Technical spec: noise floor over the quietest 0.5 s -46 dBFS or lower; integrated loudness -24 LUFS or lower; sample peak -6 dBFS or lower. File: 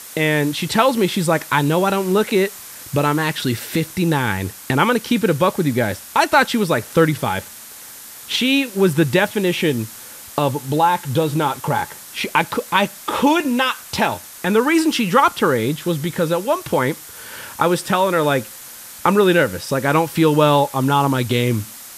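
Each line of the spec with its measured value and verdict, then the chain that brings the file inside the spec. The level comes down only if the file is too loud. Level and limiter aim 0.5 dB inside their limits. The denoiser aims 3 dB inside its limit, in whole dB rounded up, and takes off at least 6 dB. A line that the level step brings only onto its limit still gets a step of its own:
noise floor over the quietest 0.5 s -38 dBFS: fail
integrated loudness -18.5 LUFS: fail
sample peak -1.5 dBFS: fail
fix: noise reduction 6 dB, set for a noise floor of -38 dBFS; trim -6 dB

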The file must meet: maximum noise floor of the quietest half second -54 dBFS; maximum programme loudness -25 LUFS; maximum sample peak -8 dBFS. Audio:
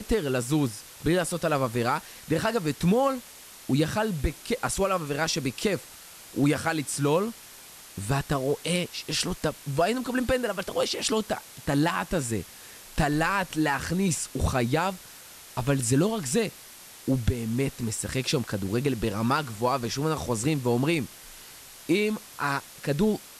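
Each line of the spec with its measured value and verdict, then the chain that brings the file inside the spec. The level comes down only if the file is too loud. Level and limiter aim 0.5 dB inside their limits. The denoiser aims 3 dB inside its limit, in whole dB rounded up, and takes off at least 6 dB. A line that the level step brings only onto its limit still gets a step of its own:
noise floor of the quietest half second -47 dBFS: fail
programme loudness -27.5 LUFS: pass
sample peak -9.0 dBFS: pass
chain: noise reduction 10 dB, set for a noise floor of -47 dBFS

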